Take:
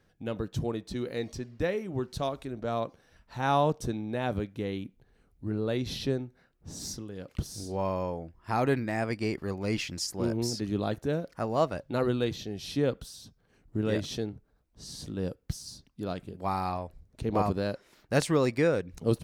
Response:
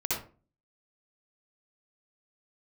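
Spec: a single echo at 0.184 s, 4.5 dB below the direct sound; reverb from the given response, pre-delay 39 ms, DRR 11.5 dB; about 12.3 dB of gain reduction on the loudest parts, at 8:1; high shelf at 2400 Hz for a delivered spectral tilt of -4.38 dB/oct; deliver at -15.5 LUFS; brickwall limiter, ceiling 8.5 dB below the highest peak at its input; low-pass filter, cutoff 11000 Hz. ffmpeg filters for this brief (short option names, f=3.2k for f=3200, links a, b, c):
-filter_complex "[0:a]lowpass=11k,highshelf=f=2.4k:g=6.5,acompressor=threshold=-32dB:ratio=8,alimiter=level_in=4dB:limit=-24dB:level=0:latency=1,volume=-4dB,aecho=1:1:184:0.596,asplit=2[a][b];[1:a]atrim=start_sample=2205,adelay=39[c];[b][c]afir=irnorm=-1:irlink=0,volume=-18.5dB[d];[a][d]amix=inputs=2:normalize=0,volume=22dB"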